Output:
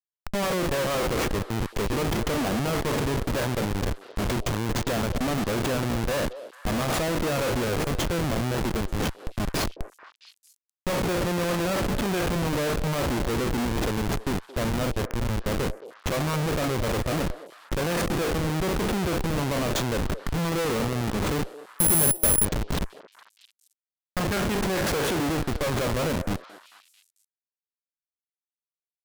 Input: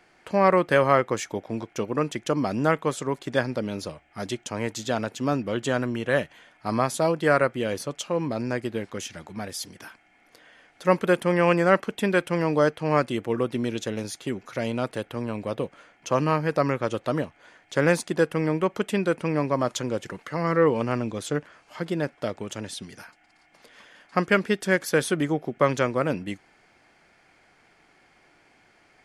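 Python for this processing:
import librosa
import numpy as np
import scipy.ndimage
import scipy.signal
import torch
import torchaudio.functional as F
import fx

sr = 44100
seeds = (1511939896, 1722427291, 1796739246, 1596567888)

y = fx.spec_trails(x, sr, decay_s=0.39)
y = fx.schmitt(y, sr, flips_db=-28.0)
y = fx.echo_stepped(y, sr, ms=222, hz=520.0, octaves=1.4, feedback_pct=70, wet_db=-11)
y = fx.resample_bad(y, sr, factor=4, down='none', up='zero_stuff', at=(21.79, 22.45))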